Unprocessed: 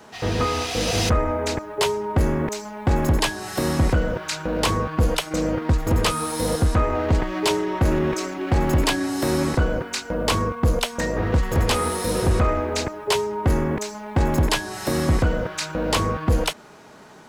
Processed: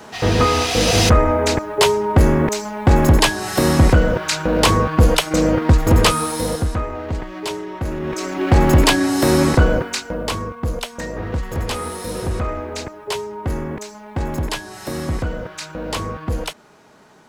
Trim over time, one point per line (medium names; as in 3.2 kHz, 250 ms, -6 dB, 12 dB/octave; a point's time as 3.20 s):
6.06 s +7 dB
6.93 s -5 dB
7.98 s -5 dB
8.40 s +7 dB
9.74 s +7 dB
10.38 s -3.5 dB